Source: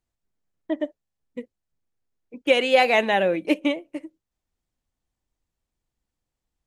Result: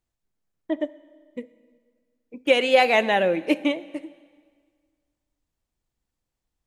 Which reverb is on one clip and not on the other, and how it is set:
dense smooth reverb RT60 1.8 s, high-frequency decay 0.9×, pre-delay 0 ms, DRR 16.5 dB

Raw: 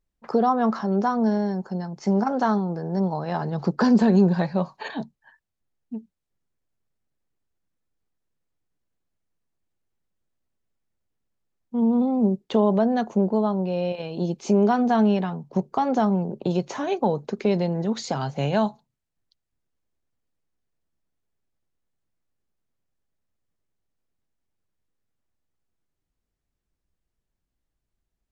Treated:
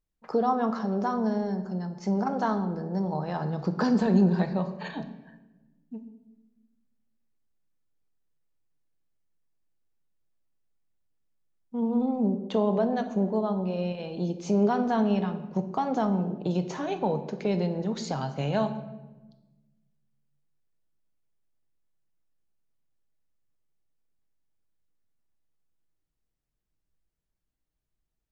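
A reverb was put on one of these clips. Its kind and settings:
rectangular room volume 620 cubic metres, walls mixed, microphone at 0.55 metres
level −5 dB

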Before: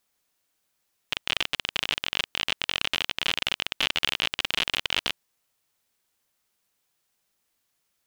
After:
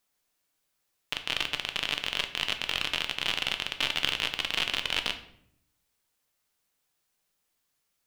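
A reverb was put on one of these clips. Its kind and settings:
rectangular room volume 130 cubic metres, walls mixed, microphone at 0.43 metres
level −3 dB

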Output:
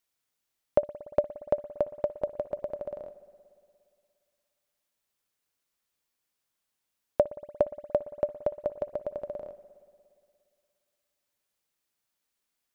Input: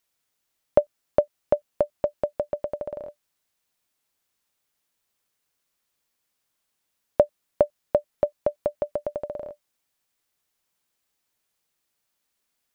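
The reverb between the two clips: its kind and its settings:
spring reverb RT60 2.3 s, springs 58 ms, chirp 20 ms, DRR 14 dB
level −5 dB

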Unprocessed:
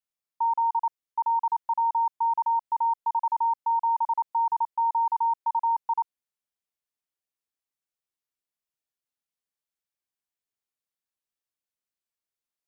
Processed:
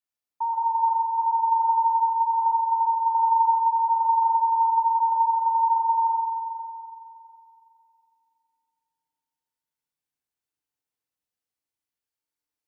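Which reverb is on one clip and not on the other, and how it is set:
feedback delay network reverb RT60 2.7 s, low-frequency decay 1.45×, high-frequency decay 0.6×, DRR −3 dB
level −3.5 dB

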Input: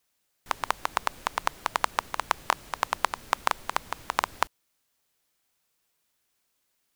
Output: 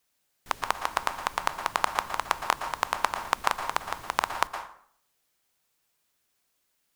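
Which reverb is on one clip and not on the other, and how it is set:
dense smooth reverb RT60 0.59 s, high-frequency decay 0.7×, pre-delay 105 ms, DRR 7.5 dB

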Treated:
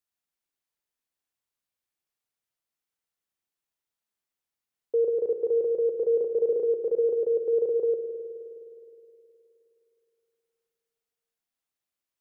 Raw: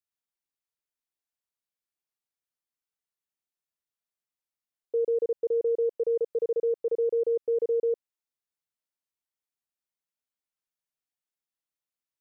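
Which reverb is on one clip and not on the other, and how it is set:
spring reverb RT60 2.9 s, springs 52 ms, chirp 50 ms, DRR 4.5 dB
level +2.5 dB

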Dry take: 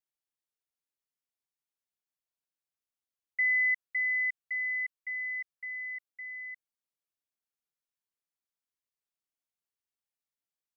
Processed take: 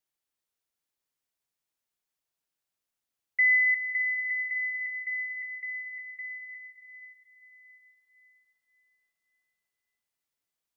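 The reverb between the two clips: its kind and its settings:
dense smooth reverb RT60 4.4 s, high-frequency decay 0.85×, pre-delay 120 ms, DRR 8 dB
level +5 dB

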